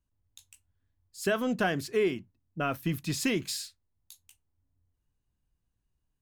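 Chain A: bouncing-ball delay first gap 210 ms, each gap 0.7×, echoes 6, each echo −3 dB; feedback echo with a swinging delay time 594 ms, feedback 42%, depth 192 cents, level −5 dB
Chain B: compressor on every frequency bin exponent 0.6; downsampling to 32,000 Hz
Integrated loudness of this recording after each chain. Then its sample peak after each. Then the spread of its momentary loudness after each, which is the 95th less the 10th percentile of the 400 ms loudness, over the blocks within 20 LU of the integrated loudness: −28.0, −28.5 LKFS; −14.5, −13.5 dBFS; 17, 20 LU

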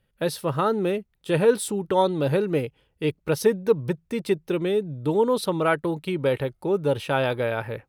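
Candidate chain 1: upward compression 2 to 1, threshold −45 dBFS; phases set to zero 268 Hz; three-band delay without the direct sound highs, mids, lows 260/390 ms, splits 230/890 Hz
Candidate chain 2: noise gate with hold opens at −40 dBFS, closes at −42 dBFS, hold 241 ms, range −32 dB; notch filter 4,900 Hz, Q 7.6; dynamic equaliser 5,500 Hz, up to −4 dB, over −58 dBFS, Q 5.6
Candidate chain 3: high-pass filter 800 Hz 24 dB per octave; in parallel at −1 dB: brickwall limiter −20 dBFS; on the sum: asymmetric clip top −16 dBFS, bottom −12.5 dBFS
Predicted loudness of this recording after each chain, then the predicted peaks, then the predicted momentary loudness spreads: −29.5, −24.5, −28.5 LKFS; −11.0, −7.0, −12.5 dBFS; 7, 7, 10 LU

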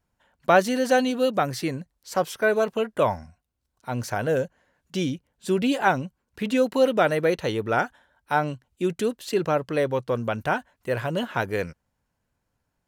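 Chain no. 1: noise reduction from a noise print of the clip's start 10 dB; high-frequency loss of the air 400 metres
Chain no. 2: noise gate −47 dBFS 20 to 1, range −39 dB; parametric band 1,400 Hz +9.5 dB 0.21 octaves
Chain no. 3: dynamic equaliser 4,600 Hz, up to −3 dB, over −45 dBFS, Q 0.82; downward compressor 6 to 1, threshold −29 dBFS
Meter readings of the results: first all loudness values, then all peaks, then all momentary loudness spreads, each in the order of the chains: −26.5, −23.5, −34.5 LKFS; −6.5, −1.5, −15.5 dBFS; 11, 12, 7 LU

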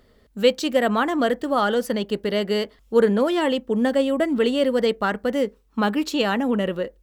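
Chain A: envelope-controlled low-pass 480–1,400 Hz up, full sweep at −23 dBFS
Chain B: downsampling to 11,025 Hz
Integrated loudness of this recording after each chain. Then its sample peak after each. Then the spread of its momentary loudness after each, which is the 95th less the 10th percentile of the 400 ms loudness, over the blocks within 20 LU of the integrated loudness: −19.5, −22.0 LKFS; −2.5, −5.0 dBFS; 8, 5 LU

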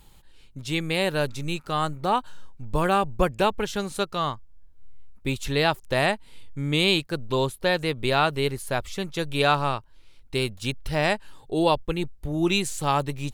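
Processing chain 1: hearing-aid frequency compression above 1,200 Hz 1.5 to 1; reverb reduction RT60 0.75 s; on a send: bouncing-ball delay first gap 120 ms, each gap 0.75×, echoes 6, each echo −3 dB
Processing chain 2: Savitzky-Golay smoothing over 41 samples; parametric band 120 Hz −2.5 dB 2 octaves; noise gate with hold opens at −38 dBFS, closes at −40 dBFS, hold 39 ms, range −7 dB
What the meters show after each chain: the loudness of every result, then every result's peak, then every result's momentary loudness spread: −24.0, −27.5 LKFS; −6.5, −8.5 dBFS; 8, 10 LU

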